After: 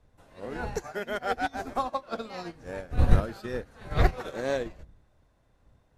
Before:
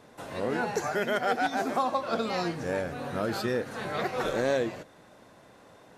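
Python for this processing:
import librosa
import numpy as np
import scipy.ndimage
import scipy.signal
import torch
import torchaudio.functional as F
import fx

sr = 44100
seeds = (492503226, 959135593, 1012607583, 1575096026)

y = fx.dmg_wind(x, sr, seeds[0], corner_hz=81.0, level_db=-33.0)
y = fx.upward_expand(y, sr, threshold_db=-35.0, expansion=2.5)
y = F.gain(torch.from_numpy(y), 8.5).numpy()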